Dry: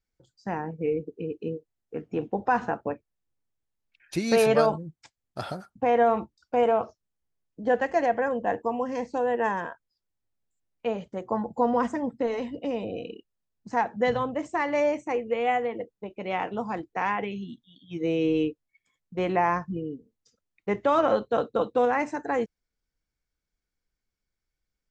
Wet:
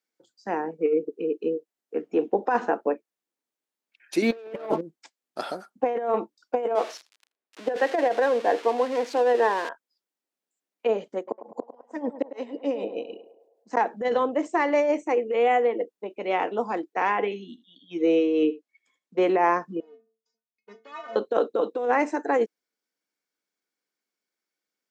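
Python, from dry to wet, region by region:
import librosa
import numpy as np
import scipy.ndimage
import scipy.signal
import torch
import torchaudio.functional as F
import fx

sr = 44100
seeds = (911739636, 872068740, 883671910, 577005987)

y = fx.chain(x, sr, fx.steep_lowpass(hz=3700.0, slope=36),
    fx.leveller(passes=2), at=(4.22, 4.81))
y = fx.chain(y, sr, fx.crossing_spikes(level_db=-21.5),
    fx.bandpass_edges(low_hz=270.0, high_hz=3100.0),
    fx.echo_single(ms=81, db=-24.0), at=(6.75, 9.69))
y = fx.chain(y, sr, fx.tremolo(hz=6.6, depth=0.7),
    fx.gate_flip(shuts_db=-19.0, range_db=-37),
    fx.echo_banded(ms=104, feedback_pct=59, hz=730.0, wet_db=-9), at=(11.17, 13.77))
y = fx.chain(y, sr, fx.lowpass(hz=8100.0, slope=12),
    fx.echo_single(ms=78, db=-18.5), at=(16.93, 19.22))
y = fx.chain(y, sr, fx.halfwave_gain(db=-12.0),
    fx.steep_lowpass(hz=7300.0, slope=96),
    fx.stiff_resonator(f0_hz=220.0, decay_s=0.32, stiffness=0.008), at=(19.8, 21.16))
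y = scipy.signal.sosfilt(scipy.signal.butter(4, 250.0, 'highpass', fs=sr, output='sos'), y)
y = fx.dynamic_eq(y, sr, hz=410.0, q=1.4, threshold_db=-38.0, ratio=4.0, max_db=6)
y = fx.over_compress(y, sr, threshold_db=-21.0, ratio=-0.5)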